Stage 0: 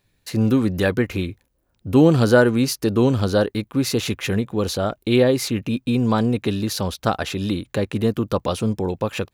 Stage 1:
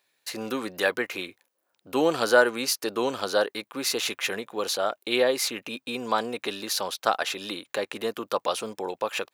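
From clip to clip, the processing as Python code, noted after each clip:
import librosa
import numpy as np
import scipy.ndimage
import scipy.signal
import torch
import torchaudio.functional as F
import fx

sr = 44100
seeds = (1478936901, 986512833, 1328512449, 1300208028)

y = scipy.signal.sosfilt(scipy.signal.butter(2, 610.0, 'highpass', fs=sr, output='sos'), x)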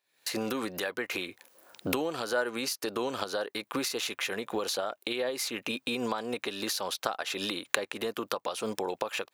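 y = fx.recorder_agc(x, sr, target_db=-12.0, rise_db_per_s=77.0, max_gain_db=30)
y = F.gain(torch.from_numpy(y), -11.0).numpy()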